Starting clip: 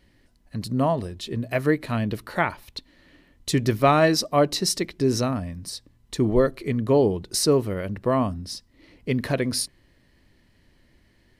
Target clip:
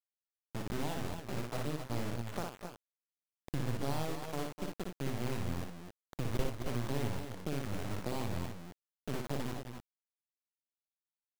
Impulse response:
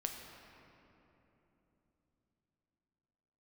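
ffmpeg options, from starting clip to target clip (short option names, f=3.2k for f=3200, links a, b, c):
-filter_complex "[0:a]lowpass=f=1.1k:w=0.5412,lowpass=f=1.1k:w=1.3066,aemphasis=mode=reproduction:type=50fm,acrossover=split=120[a][b];[b]acompressor=threshold=-32dB:ratio=12[c];[a][c]amix=inputs=2:normalize=0,acrusher=bits=3:dc=4:mix=0:aa=0.000001,aecho=1:1:58|251|268:0.596|0.299|0.376,volume=-4dB"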